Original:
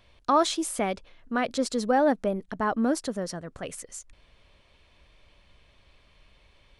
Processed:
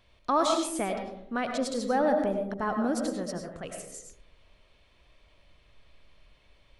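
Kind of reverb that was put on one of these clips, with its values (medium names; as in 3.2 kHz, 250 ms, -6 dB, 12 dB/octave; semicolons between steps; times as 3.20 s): algorithmic reverb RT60 0.74 s, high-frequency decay 0.3×, pre-delay 60 ms, DRR 3.5 dB; trim -4 dB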